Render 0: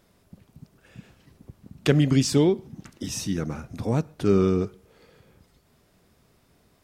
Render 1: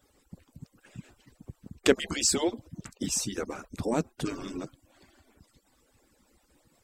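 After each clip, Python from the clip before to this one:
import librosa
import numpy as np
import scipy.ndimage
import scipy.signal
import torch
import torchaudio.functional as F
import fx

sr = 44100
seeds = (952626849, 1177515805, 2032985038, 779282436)

y = fx.hpss_only(x, sr, part='percussive')
y = fx.peak_eq(y, sr, hz=7700.0, db=10.0, octaves=0.26)
y = F.gain(torch.from_numpy(y), 1.0).numpy()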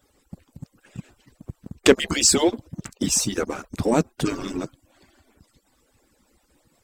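y = fx.leveller(x, sr, passes=1)
y = F.gain(torch.from_numpy(y), 4.5).numpy()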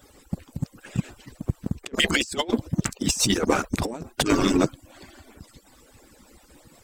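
y = fx.over_compress(x, sr, threshold_db=-27.0, ratio=-0.5)
y = F.gain(torch.from_numpy(y), 4.5).numpy()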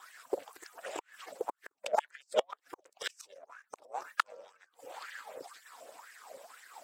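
y = fx.gate_flip(x, sr, shuts_db=-14.0, range_db=-35)
y = y * np.sin(2.0 * np.pi * 200.0 * np.arange(len(y)) / sr)
y = fx.filter_lfo_highpass(y, sr, shape='sine', hz=2.0, low_hz=530.0, high_hz=1800.0, q=6.5)
y = F.gain(torch.from_numpy(y), 1.0).numpy()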